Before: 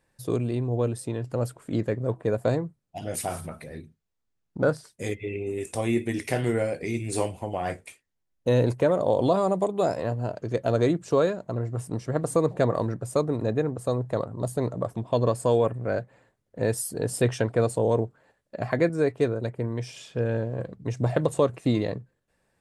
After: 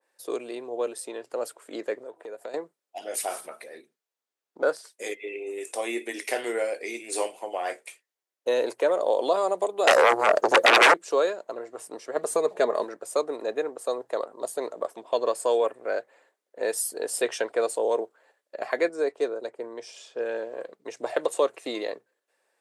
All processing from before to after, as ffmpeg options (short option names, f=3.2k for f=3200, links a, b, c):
-filter_complex "[0:a]asettb=1/sr,asplit=3[a][b][c];[a]atrim=end=2.034[d];[b]atrim=start=2.03:end=2.54,asetpts=PTS-STARTPTS,afade=t=in:d=0.004:c=qsin,afade=t=out:st=0.506:d=0.004:c=qsin,acompressor=threshold=-32dB:ratio=6:attack=3.2:release=140:knee=1:detection=peak,bandreject=f=1.1k:w=7.8[e];[c]atrim=start=2.536[f];[d][e]acrossfade=d=0.004:c1=hsin:c2=qsin[g];[g][f]acrossfade=d=0.004:c1=qsin:c2=hsin,asettb=1/sr,asplit=3[h][i][j];[h]atrim=end=9.874[k];[i]atrim=start=9.87:end=10.94,asetpts=PTS-STARTPTS,afade=t=in:d=0.004:c=qsin,afade=t=out:st=1.066:d=0.004:c=qsin,agate=range=-33dB:threshold=-41dB:ratio=3:release=100:detection=peak,equalizer=f=2.5k:w=0.74:g=-14,aeval=exprs='0.251*sin(PI/2*7.08*val(0)/0.251)':c=same[l];[j]atrim=start=10.936[m];[k][l]acrossfade=d=0.004:c1=hsin:c2=qsin[n];[n][m]acrossfade=d=0.004:c1=qsin:c2=hsin,asettb=1/sr,asplit=3[o][p][q];[o]atrim=end=12.164[r];[p]atrim=start=12.16:end=12.84,asetpts=PTS-STARTPTS,afade=t=in:d=0.004:c=qsin,afade=t=out:st=0.676:d=0.004:c=qsin,lowshelf=f=160:g=10,aecho=1:1:4.8:0.48,atrim=end_sample=29988[s];[q]atrim=start=12.836[t];[r][s]acrossfade=d=0.004:c1=hsin:c2=qsin[u];[u][t]acrossfade=d=0.004:c1=qsin:c2=hsin,asettb=1/sr,asplit=3[v][w][x];[v]atrim=end=18.884[y];[w]atrim=start=18.88:end=20.2,asetpts=PTS-STARTPTS,afade=t=in:d=0.004:c=qsin,afade=t=out:st=1.316:d=0.004:c=qsin,lowpass=8.3k,equalizer=f=2.3k:t=o:w=1.4:g=-6[z];[x]atrim=start=20.196[aa];[y][z]acrossfade=d=0.004:c1=hsin:c2=qsin[ab];[ab][aa]acrossfade=d=0.004:c1=qsin:c2=hsin,highpass=f=390:w=0.5412,highpass=f=390:w=1.3066,adynamicequalizer=threshold=0.0126:dfrequency=1700:dqfactor=0.7:tfrequency=1700:tqfactor=0.7:attack=5:release=100:ratio=0.375:range=1.5:mode=boostabove:tftype=highshelf"